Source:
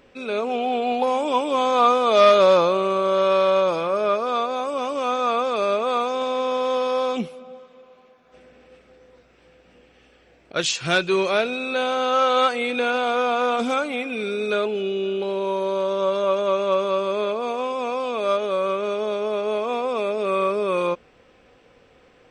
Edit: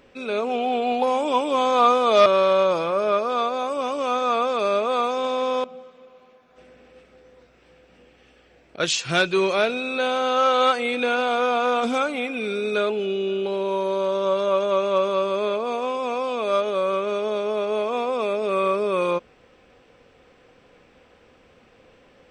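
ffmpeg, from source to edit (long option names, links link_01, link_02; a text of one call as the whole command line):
ffmpeg -i in.wav -filter_complex "[0:a]asplit=3[link_01][link_02][link_03];[link_01]atrim=end=2.262[link_04];[link_02]atrim=start=3.228:end=6.612[link_05];[link_03]atrim=start=7.398[link_06];[link_04][link_05]acrossfade=duration=0.004:curve1=hsin:curve2=hsin[link_07];[link_07][link_06]acrossfade=duration=0.004:curve1=hsin:curve2=hsin" out.wav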